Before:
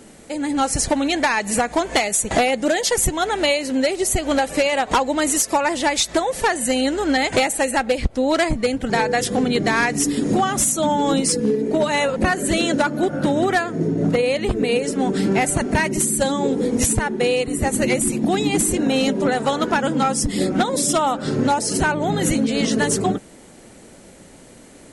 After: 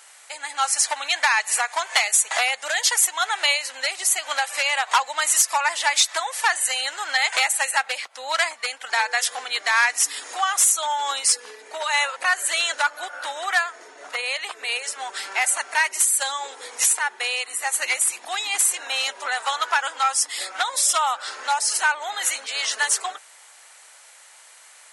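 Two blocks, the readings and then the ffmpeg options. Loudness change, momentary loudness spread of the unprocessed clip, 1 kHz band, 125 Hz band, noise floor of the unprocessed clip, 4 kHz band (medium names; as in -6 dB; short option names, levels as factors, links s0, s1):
-2.0 dB, 3 LU, -2.5 dB, under -40 dB, -45 dBFS, +2.0 dB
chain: -af "highpass=f=930:w=0.5412,highpass=f=930:w=1.3066,volume=1.26"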